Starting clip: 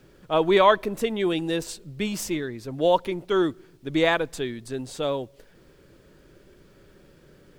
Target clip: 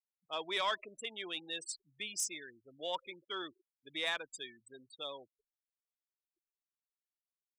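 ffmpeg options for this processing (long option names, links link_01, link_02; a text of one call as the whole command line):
ffmpeg -i in.wav -af "afftfilt=real='re*gte(hypot(re,im),0.0316)':imag='im*gte(hypot(re,im),0.0316)':win_size=1024:overlap=0.75,aderivative,asoftclip=type=tanh:threshold=-27dB,volume=2dB" out.wav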